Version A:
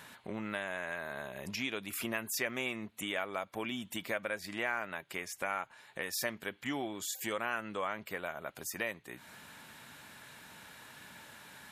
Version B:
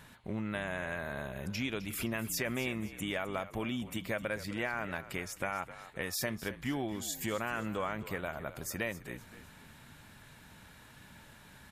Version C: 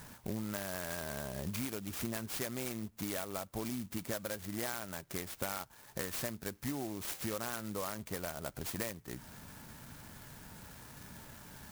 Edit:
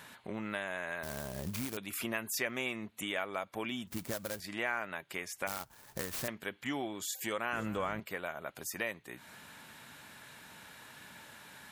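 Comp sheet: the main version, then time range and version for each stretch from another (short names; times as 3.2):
A
1.03–1.77 from C
3.87–4.4 from C
5.47–6.28 from C
7.53–8 from B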